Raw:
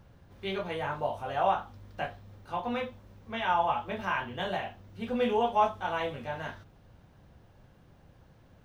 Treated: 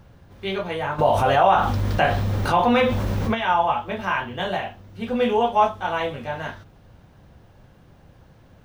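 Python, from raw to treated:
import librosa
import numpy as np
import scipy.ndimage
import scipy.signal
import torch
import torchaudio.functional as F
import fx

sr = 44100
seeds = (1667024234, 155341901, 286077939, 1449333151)

y = fx.env_flatten(x, sr, amount_pct=70, at=(0.98, 3.33), fade=0.02)
y = y * 10.0 ** (7.0 / 20.0)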